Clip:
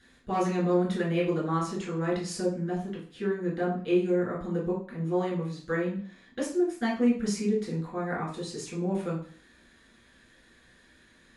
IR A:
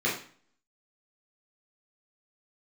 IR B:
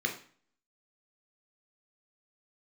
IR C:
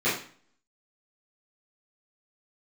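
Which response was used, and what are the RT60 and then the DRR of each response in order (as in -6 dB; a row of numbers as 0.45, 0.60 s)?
A; 0.45, 0.45, 0.45 s; -6.0, 2.5, -12.5 dB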